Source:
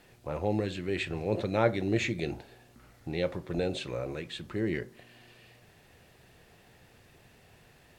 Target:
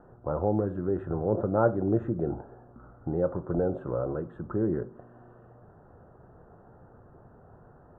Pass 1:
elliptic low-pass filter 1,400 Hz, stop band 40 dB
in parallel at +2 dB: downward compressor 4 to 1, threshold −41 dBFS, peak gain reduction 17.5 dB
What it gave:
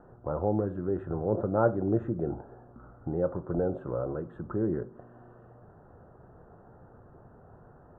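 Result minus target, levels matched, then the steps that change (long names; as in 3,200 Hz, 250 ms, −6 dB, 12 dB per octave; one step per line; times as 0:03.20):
downward compressor: peak gain reduction +5 dB
change: downward compressor 4 to 1, threshold −34.5 dBFS, peak gain reduction 13 dB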